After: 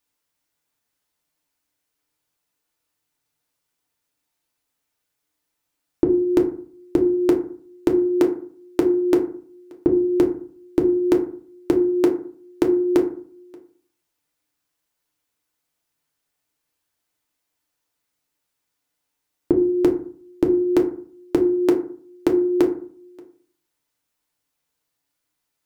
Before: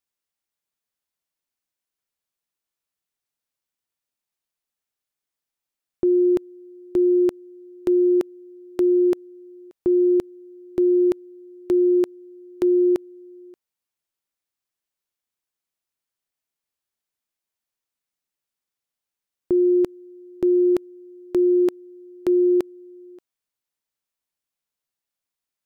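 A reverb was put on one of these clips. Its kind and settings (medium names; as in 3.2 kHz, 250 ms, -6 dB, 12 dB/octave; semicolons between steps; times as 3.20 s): FDN reverb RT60 0.49 s, low-frequency decay 1.25×, high-frequency decay 0.45×, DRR 0.5 dB; trim +7 dB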